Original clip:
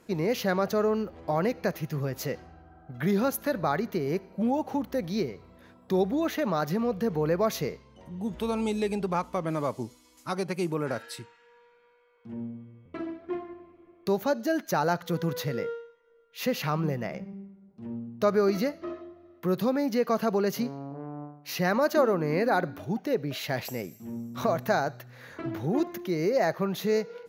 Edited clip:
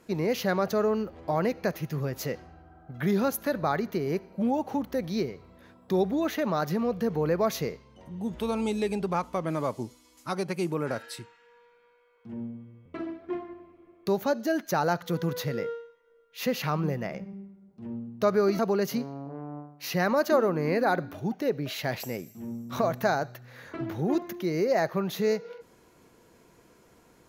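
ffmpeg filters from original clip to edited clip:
-filter_complex "[0:a]asplit=2[s0][s1];[s0]atrim=end=18.592[s2];[s1]atrim=start=20.238[s3];[s2][s3]acrossfade=d=0.004:c1=hsin:c2=hsin"

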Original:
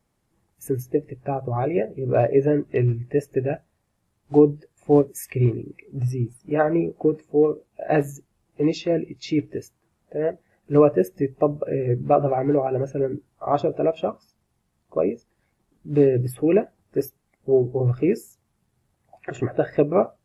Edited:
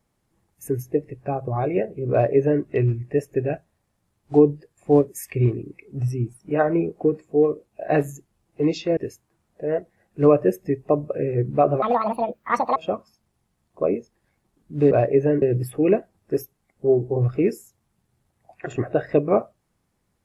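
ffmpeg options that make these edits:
-filter_complex "[0:a]asplit=6[s0][s1][s2][s3][s4][s5];[s0]atrim=end=8.972[s6];[s1]atrim=start=9.488:end=12.344[s7];[s2]atrim=start=12.34:end=13.91,asetpts=PTS-STARTPTS,asetrate=73647,aresample=44100,atrim=end_sample=41459,asetpts=PTS-STARTPTS[s8];[s3]atrim=start=13.906:end=16.062[s9];[s4]atrim=start=2.118:end=2.632[s10];[s5]atrim=start=16.058[s11];[s6][s7]acrossfade=d=0.004:c1=hsin:c2=hsin[s12];[s12][s8]acrossfade=d=0.004:c1=hsin:c2=hsin[s13];[s13][s9]acrossfade=d=0.004:c1=hsin:c2=hsin[s14];[s14][s10]acrossfade=d=0.004:c1=hsin:c2=hsin[s15];[s15][s11]acrossfade=d=0.004:c1=hsin:c2=hsin"

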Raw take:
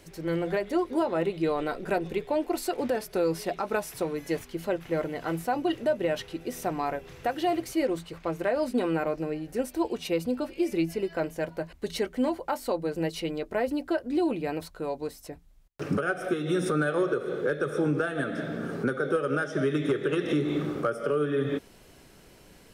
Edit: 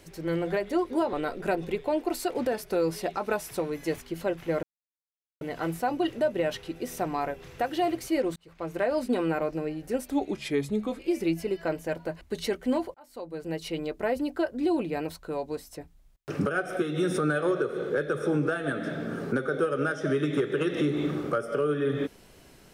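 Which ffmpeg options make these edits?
-filter_complex "[0:a]asplit=7[s0][s1][s2][s3][s4][s5][s6];[s0]atrim=end=1.132[s7];[s1]atrim=start=1.558:end=5.06,asetpts=PTS-STARTPTS,afade=t=out:st=3.498:d=0.004:c=hsin,apad=pad_dur=0.78[s8];[s2]atrim=start=5.06:end=8.01,asetpts=PTS-STARTPTS,afade=t=in:d=0.004:c=hsin,afade=t=out:st=2.946:d=0.004:c=hsin[s9];[s3]atrim=start=8.01:end=9.754,asetpts=PTS-STARTPTS,afade=t=in:d=0.45[s10];[s4]atrim=start=9.75:end=10.51,asetpts=PTS-STARTPTS,asetrate=37485,aresample=44100[s11];[s5]atrim=start=10.506:end=12.46,asetpts=PTS-STARTPTS,afade=t=out:st=1.95:d=0.004:c=hsin[s12];[s6]atrim=start=12.46,asetpts=PTS-STARTPTS,afade=t=in:d=0.89[s13];[s8][s9][s10]concat=n=3:v=0:a=1[s14];[s7][s14]acrossfade=d=0.004:c1=hsin:c2=hsin[s15];[s15][s11]acrossfade=d=0.004:c1=hsin:c2=hsin[s16];[s12][s13]concat=n=2:v=0:a=1[s17];[s16][s17]acrossfade=d=0.004:c1=hsin:c2=hsin"

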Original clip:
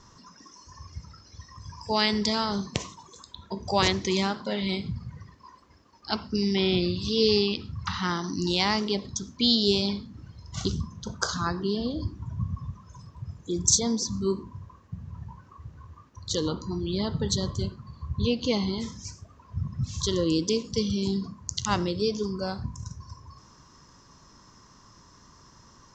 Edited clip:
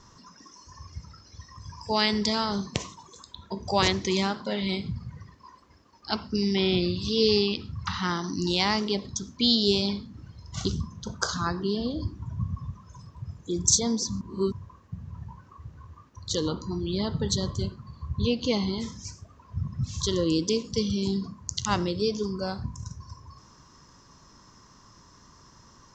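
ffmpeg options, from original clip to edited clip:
-filter_complex "[0:a]asplit=3[s0][s1][s2];[s0]atrim=end=14.212[s3];[s1]atrim=start=14.208:end=14.522,asetpts=PTS-STARTPTS,areverse[s4];[s2]atrim=start=14.518[s5];[s3][s4]acrossfade=d=0.004:c1=hsin:c2=hsin[s6];[s6][s5]acrossfade=d=0.004:c1=hsin:c2=hsin"

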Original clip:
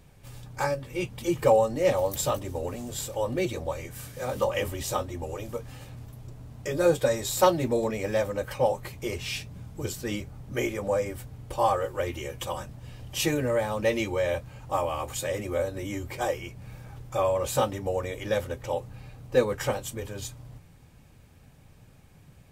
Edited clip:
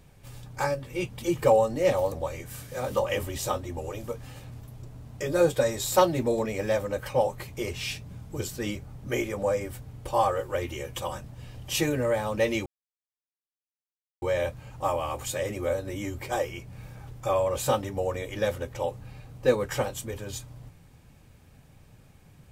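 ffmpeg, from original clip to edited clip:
-filter_complex "[0:a]asplit=3[s0][s1][s2];[s0]atrim=end=2.122[s3];[s1]atrim=start=3.568:end=14.11,asetpts=PTS-STARTPTS,afade=t=out:st=10.538:d=0.004:c=hsin,apad=pad_dur=1.56[s4];[s2]atrim=start=14.11,asetpts=PTS-STARTPTS,afade=t=in:d=0.004:c=hsin[s5];[s4][s5]concat=n=2:v=0:a=1[s6];[s3][s6]acrossfade=d=0.004:c1=hsin:c2=hsin"

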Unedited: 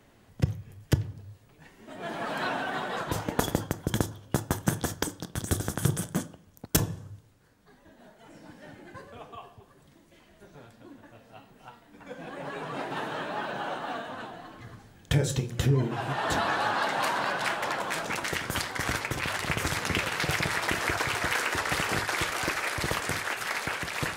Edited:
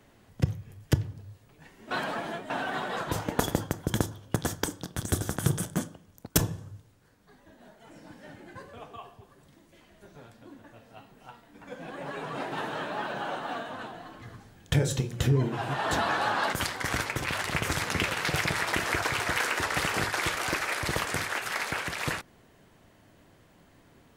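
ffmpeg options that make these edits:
-filter_complex "[0:a]asplit=5[s0][s1][s2][s3][s4];[s0]atrim=end=1.912[s5];[s1]atrim=start=1.908:end=2.502,asetpts=PTS-STARTPTS,areverse[s6];[s2]atrim=start=2.498:end=4.362[s7];[s3]atrim=start=4.748:end=16.922[s8];[s4]atrim=start=18.478[s9];[s5][s6]acrossfade=d=0.004:c1=hsin:c2=hsin[s10];[s10][s7]acrossfade=d=0.004:c1=hsin:c2=hsin[s11];[s11][s8]acrossfade=d=0.004:c1=hsin:c2=hsin[s12];[s12][s9]acrossfade=d=0.004:c1=hsin:c2=hsin"

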